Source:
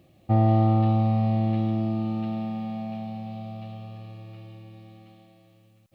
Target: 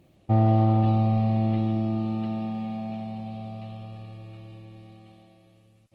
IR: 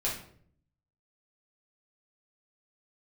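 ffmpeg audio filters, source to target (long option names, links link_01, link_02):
-ar 48000 -c:a libopus -b:a 16k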